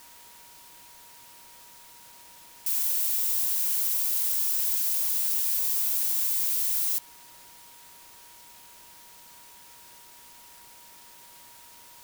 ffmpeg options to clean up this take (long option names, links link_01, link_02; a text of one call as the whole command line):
ffmpeg -i in.wav -af "bandreject=frequency=950:width=30,afwtdn=0.0028" out.wav